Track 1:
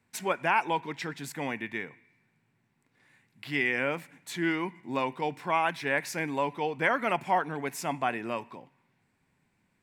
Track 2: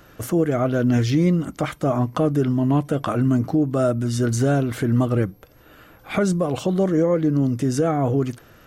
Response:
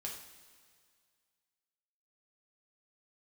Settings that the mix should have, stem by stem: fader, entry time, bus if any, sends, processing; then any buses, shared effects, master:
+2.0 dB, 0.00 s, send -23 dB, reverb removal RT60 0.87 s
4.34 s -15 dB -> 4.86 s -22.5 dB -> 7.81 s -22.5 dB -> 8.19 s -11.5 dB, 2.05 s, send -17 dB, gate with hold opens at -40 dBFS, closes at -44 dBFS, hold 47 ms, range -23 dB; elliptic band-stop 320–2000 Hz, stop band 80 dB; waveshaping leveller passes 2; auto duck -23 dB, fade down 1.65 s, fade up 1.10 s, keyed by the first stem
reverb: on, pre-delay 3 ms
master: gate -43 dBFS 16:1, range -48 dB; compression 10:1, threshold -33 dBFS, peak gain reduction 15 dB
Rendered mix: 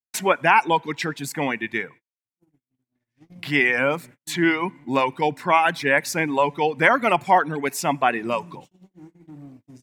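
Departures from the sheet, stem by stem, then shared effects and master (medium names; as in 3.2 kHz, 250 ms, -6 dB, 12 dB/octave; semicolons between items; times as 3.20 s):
stem 1 +2.0 dB -> +9.5 dB; master: missing compression 10:1, threshold -33 dBFS, peak gain reduction 15 dB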